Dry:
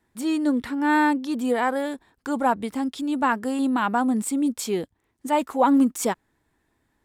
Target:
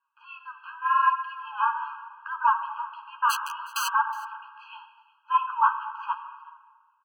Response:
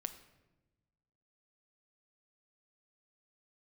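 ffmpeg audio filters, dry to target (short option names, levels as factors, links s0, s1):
-filter_complex "[1:a]atrim=start_sample=2205,asetrate=23814,aresample=44100[s0];[0:a][s0]afir=irnorm=-1:irlink=0,highpass=f=330:t=q:w=0.5412,highpass=f=330:t=q:w=1.307,lowpass=f=2600:t=q:w=0.5176,lowpass=f=2600:t=q:w=0.7071,lowpass=f=2600:t=q:w=1.932,afreqshift=140,asplit=3[s1][s2][s3];[s1]afade=t=out:st=3.29:d=0.02[s4];[s2]aeval=exprs='(mod(8.91*val(0)+1,2)-1)/8.91':c=same,afade=t=in:st=3.29:d=0.02,afade=t=out:st=3.87:d=0.02[s5];[s3]afade=t=in:st=3.87:d=0.02[s6];[s4][s5][s6]amix=inputs=3:normalize=0,flanger=delay=6.2:depth=9.9:regen=6:speed=0.77:shape=sinusoidal,aecho=1:1:366:0.0794,dynaudnorm=f=100:g=13:m=1.5,afftfilt=real='re*eq(mod(floor(b*sr/1024/820),2),1)':imag='im*eq(mod(floor(b*sr/1024/820),2),1)':win_size=1024:overlap=0.75"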